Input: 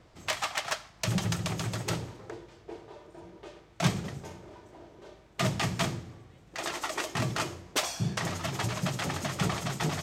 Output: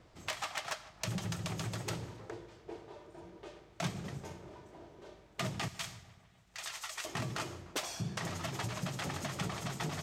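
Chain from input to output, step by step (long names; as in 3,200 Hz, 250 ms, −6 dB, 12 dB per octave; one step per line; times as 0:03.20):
0:05.68–0:07.05: guitar amp tone stack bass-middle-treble 10-0-10
downward compressor 2.5 to 1, threshold −33 dBFS, peak gain reduction 9.5 dB
feedback echo with a low-pass in the loop 149 ms, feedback 70%, low-pass 3,000 Hz, level −19 dB
level −3 dB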